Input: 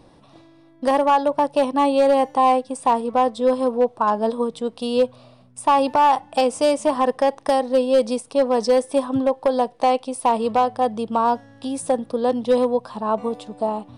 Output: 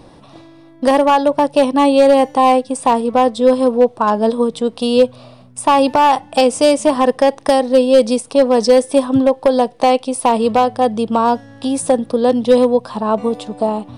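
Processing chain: dynamic EQ 960 Hz, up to -5 dB, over -31 dBFS, Q 0.94; gain +8.5 dB

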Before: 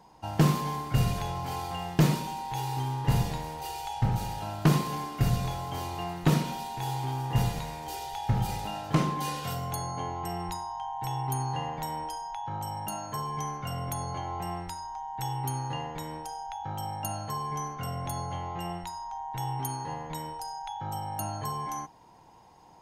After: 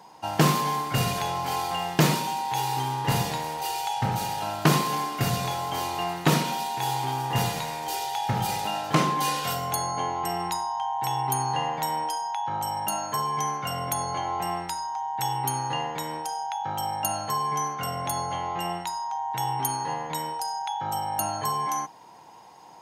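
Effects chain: HPF 120 Hz 12 dB/oct; low shelf 390 Hz -8.5 dB; gain +8.5 dB

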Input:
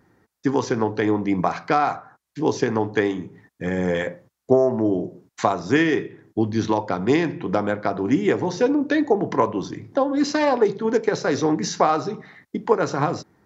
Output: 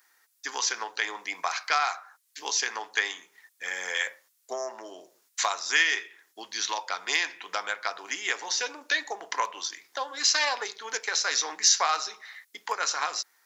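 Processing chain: Bessel high-pass 1400 Hz, order 2; tilt +4 dB/oct

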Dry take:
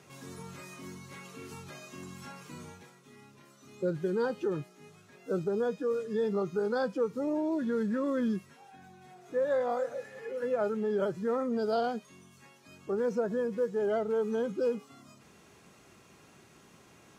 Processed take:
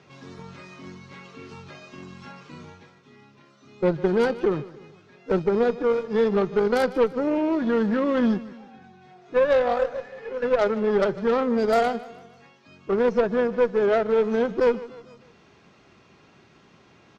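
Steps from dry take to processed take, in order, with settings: LPF 5100 Hz 24 dB/oct; added harmonics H 4 -13 dB, 6 -16 dB, 7 -23 dB, 8 -25 dB, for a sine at -19.5 dBFS; on a send: feedback echo 0.151 s, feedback 46%, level -18 dB; on the sum: gain +9 dB

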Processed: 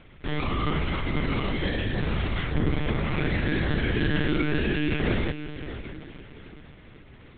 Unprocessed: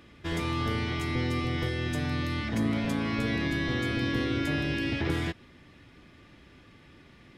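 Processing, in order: diffused feedback echo 0.538 s, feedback 41%, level -11 dB; monotone LPC vocoder at 8 kHz 150 Hz; gain +3.5 dB

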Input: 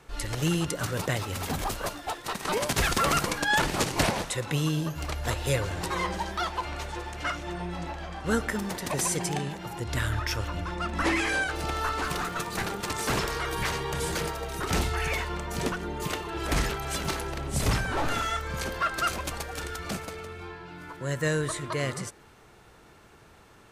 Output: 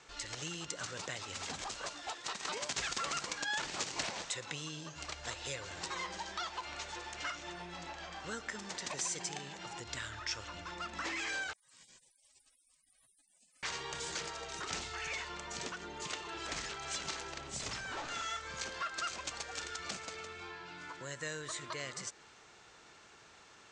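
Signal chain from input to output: compressor 2.5:1, threshold -37 dBFS, peak gain reduction 11.5 dB; steep low-pass 7600 Hz 48 dB/oct; tilt +3 dB/oct; 11.53–13.63 spectral gate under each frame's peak -30 dB weak; gain -4 dB

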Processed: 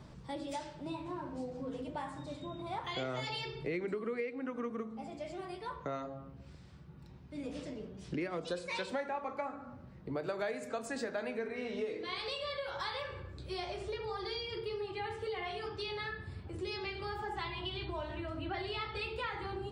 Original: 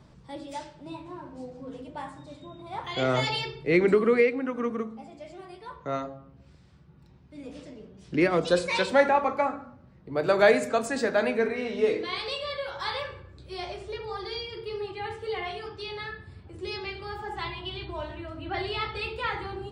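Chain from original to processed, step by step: compressor 5:1, threshold -38 dBFS, peak gain reduction 20.5 dB; gain +1.5 dB

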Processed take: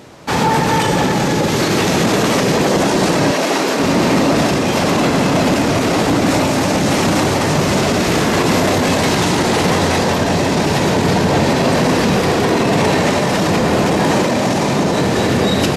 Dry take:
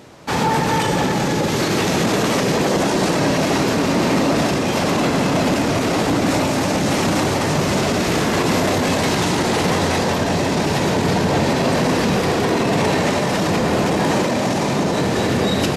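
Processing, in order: 3.31–3.8 HPF 300 Hz 12 dB/oct; gain +3.5 dB

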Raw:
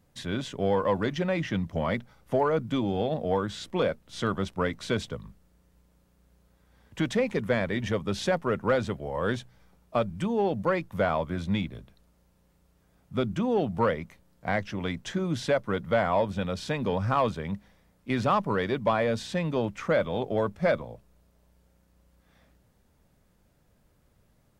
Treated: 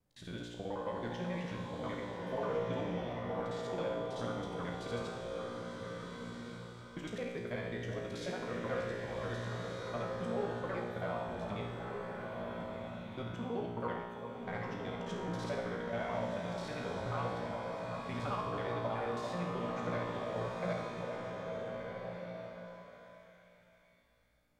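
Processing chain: local time reversal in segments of 54 ms; resonator 59 Hz, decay 1.3 s, harmonics all, mix 90%; delay with a stepping band-pass 0.393 s, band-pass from 690 Hz, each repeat 0.7 oct, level -5 dB; bloom reverb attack 1.53 s, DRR 2 dB

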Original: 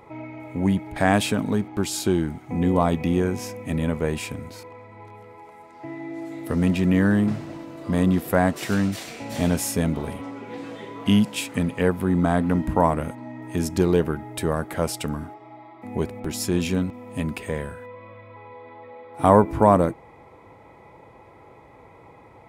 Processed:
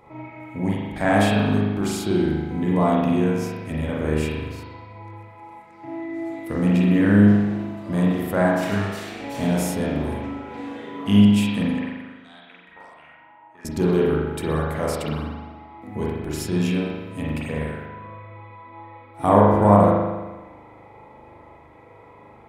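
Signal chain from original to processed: 11.79–13.65 auto-wah 690–4700 Hz, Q 4.7, up, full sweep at -14.5 dBFS; spring tank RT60 1.2 s, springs 39 ms, chirp 25 ms, DRR -5 dB; gain -4.5 dB

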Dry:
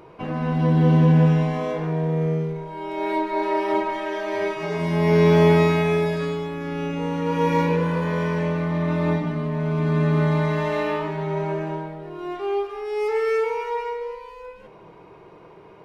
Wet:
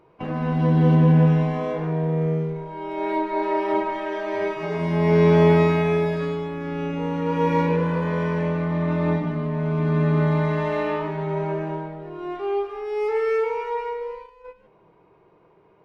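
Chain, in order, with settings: high shelf 4500 Hz -6 dB, from 0.95 s -11 dB; gate -38 dBFS, range -10 dB

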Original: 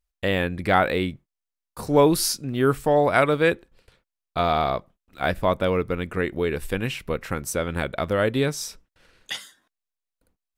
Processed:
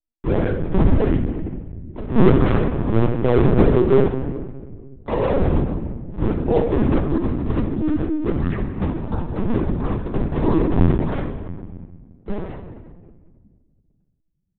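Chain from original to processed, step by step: speed glide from 93% -> 52%; gate -51 dBFS, range -18 dB; high shelf 2600 Hz +5.5 dB; decimation with a swept rate 40×, swing 160% 1.5 Hz; tilt shelf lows +9 dB, about 1400 Hz; shoebox room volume 1700 m³, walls mixed, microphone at 1.4 m; LPC vocoder at 8 kHz pitch kept; gain -5.5 dB

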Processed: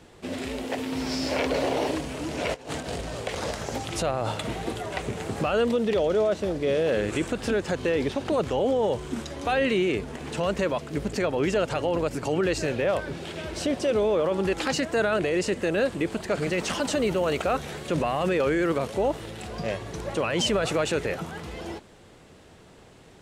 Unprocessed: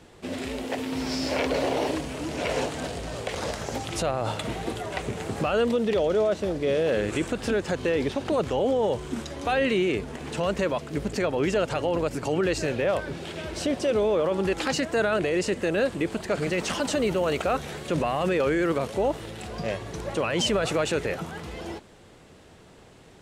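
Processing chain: 2.54–3.01 negative-ratio compressor -34 dBFS, ratio -0.5

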